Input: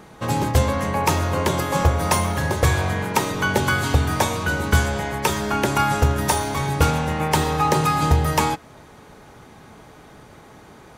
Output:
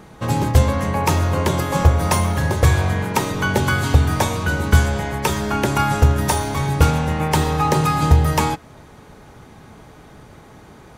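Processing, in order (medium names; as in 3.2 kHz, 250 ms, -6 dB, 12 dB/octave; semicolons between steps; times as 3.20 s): bass shelf 190 Hz +6 dB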